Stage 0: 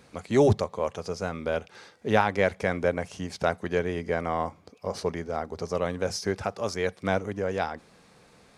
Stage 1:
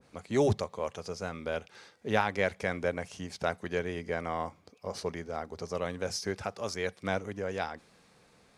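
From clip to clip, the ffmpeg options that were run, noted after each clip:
-af "adynamicequalizer=threshold=0.0158:dfrequency=1500:dqfactor=0.7:tfrequency=1500:tqfactor=0.7:attack=5:release=100:ratio=0.375:range=2:mode=boostabove:tftype=highshelf,volume=-6dB"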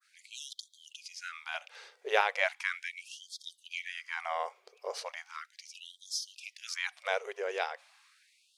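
-af "adynamicequalizer=threshold=0.00251:dfrequency=2700:dqfactor=1.5:tfrequency=2700:tqfactor=1.5:attack=5:release=100:ratio=0.375:range=3:mode=boostabove:tftype=bell,afftfilt=real='re*gte(b*sr/1024,350*pow(3200/350,0.5+0.5*sin(2*PI*0.37*pts/sr)))':imag='im*gte(b*sr/1024,350*pow(3200/350,0.5+0.5*sin(2*PI*0.37*pts/sr)))':win_size=1024:overlap=0.75"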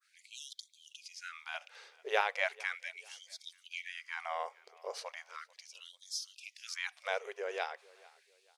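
-af "aecho=1:1:443|886:0.0668|0.0227,volume=-3.5dB"

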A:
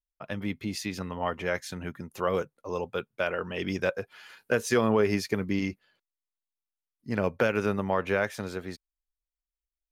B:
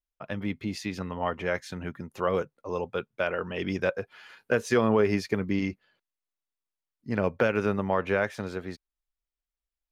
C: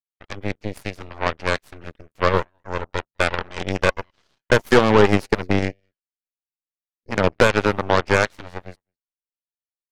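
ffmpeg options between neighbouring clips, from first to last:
-af "lowpass=f=3.8k:p=1,volume=1dB"
-af "aecho=1:1:207:0.0668,aeval=exprs='0.282*(cos(1*acos(clip(val(0)/0.282,-1,1)))-cos(1*PI/2))+0.0251*(cos(4*acos(clip(val(0)/0.282,-1,1)))-cos(4*PI/2))+0.0398*(cos(7*acos(clip(val(0)/0.282,-1,1)))-cos(7*PI/2))+0.02*(cos(8*acos(clip(val(0)/0.282,-1,1)))-cos(8*PI/2))':c=same,volume=9dB"

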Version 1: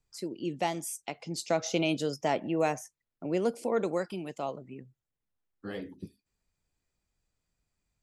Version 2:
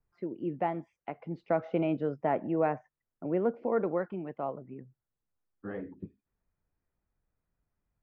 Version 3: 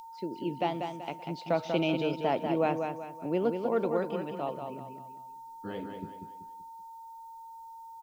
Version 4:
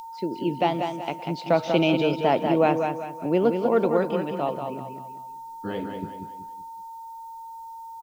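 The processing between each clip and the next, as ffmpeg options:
-af "lowpass=f=1.8k:w=0.5412,lowpass=f=1.8k:w=1.3066"
-af "aecho=1:1:191|382|573|764:0.501|0.185|0.0686|0.0254,aeval=exprs='val(0)+0.00631*sin(2*PI*910*n/s)':c=same,aexciter=amount=9.5:drive=7.7:freq=2.9k"
-af "aecho=1:1:170:0.15,volume=7.5dB"

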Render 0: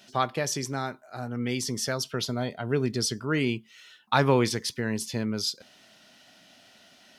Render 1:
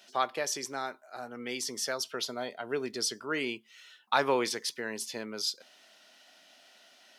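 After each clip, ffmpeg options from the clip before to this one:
-af "highpass=400,volume=-2.5dB"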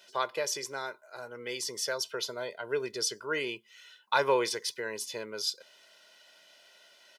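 -af "aecho=1:1:2:0.66,volume=-1.5dB"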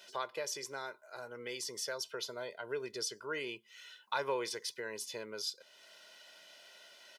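-af "acompressor=threshold=-52dB:ratio=1.5,volume=1.5dB"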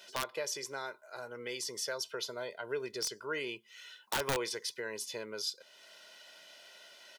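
-af "aeval=exprs='(mod(21.1*val(0)+1,2)-1)/21.1':c=same,volume=2dB"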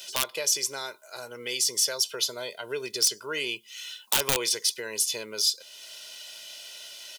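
-af "aexciter=amount=1.4:drive=9.9:freq=2.5k,volume=3.5dB"

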